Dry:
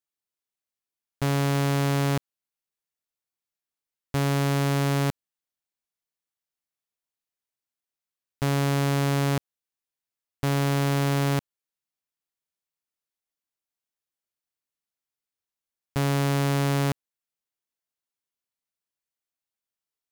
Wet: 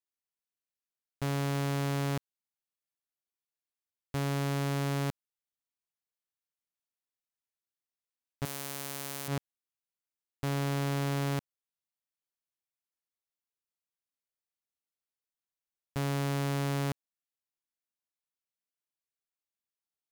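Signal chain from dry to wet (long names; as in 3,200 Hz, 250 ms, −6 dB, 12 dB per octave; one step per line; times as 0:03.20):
0:08.45–0:09.28: RIAA equalisation recording
brickwall limiter −8 dBFS, peak gain reduction 8 dB
level −7.5 dB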